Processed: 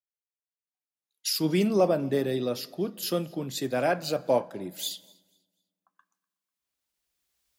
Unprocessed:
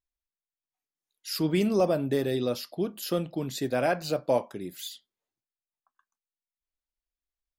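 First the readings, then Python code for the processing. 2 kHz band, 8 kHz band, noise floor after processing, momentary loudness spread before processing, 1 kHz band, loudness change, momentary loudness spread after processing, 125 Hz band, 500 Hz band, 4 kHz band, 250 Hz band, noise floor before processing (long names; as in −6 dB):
0.0 dB, +4.5 dB, below −85 dBFS, 13 LU, +1.0 dB, +0.5 dB, 10 LU, −0.5 dB, +0.5 dB, +3.5 dB, 0.0 dB, below −85 dBFS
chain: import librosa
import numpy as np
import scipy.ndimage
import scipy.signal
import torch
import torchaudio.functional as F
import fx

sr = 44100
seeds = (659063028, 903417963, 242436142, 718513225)

p1 = fx.recorder_agc(x, sr, target_db=-22.0, rise_db_per_s=10.0, max_gain_db=30)
p2 = scipy.signal.sosfilt(scipy.signal.butter(2, 97.0, 'highpass', fs=sr, output='sos'), p1)
p3 = p2 + fx.echo_feedback(p2, sr, ms=247, feedback_pct=50, wet_db=-23.5, dry=0)
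p4 = fx.rev_fdn(p3, sr, rt60_s=2.1, lf_ratio=1.25, hf_ratio=0.6, size_ms=31.0, drr_db=19.5)
y = fx.band_widen(p4, sr, depth_pct=40)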